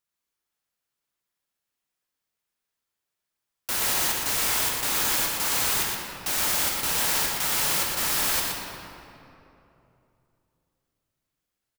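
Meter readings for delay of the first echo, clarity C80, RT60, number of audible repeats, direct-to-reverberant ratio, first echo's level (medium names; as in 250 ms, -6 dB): 120 ms, 0.5 dB, 3.0 s, 1, -1.5 dB, -5.0 dB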